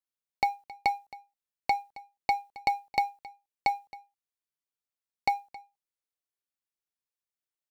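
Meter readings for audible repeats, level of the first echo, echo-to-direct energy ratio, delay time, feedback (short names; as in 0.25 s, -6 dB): 1, -19.5 dB, -19.5 dB, 0.269 s, no steady repeat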